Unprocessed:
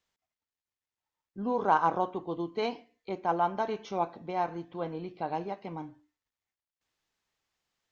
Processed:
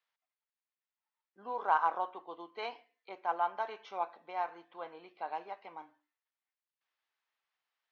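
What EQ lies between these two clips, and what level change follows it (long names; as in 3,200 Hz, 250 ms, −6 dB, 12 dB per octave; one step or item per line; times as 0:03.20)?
high-pass filter 870 Hz 12 dB per octave
low-pass filter 4,000 Hz 6 dB per octave
high-frequency loss of the air 130 metres
0.0 dB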